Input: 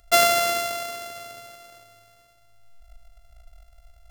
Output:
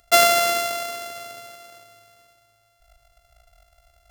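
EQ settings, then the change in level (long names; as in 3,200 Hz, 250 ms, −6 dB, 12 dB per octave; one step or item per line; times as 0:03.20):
high-pass filter 140 Hz 6 dB per octave
+2.5 dB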